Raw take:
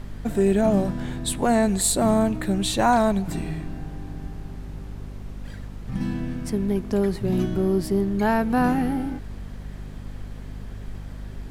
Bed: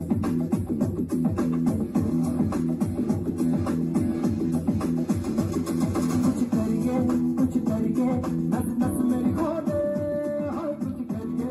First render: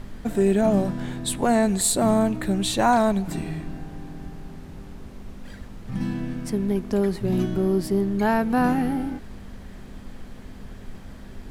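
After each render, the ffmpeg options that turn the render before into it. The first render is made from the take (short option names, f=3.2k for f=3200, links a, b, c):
-af "bandreject=f=50:t=h:w=4,bandreject=f=100:t=h:w=4,bandreject=f=150:t=h:w=4"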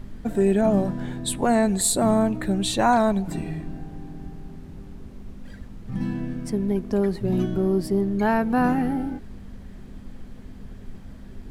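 -af "afftdn=nr=6:nf=-41"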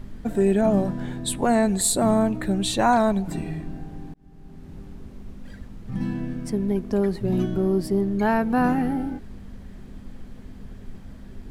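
-filter_complex "[0:a]asplit=2[a][b];[a]atrim=end=4.14,asetpts=PTS-STARTPTS,afade=t=out:st=4.136:d=0.004:c=hsin[c];[b]atrim=start=4.14,asetpts=PTS-STARTPTS,afade=t=in:d=0.61[d];[c][d]concat=n=2:v=0:a=1"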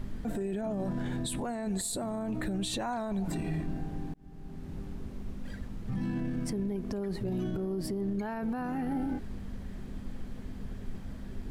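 -af "acompressor=threshold=-24dB:ratio=6,alimiter=level_in=2dB:limit=-24dB:level=0:latency=1:release=11,volume=-2dB"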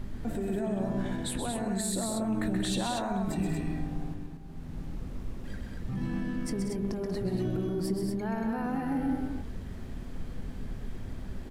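-filter_complex "[0:a]asplit=2[a][b];[b]adelay=22,volume=-14dB[c];[a][c]amix=inputs=2:normalize=0,aecho=1:1:128.3|186.6|233.2:0.501|0.316|0.562"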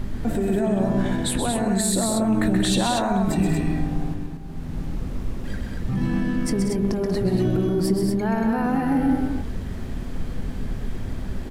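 -af "volume=9.5dB"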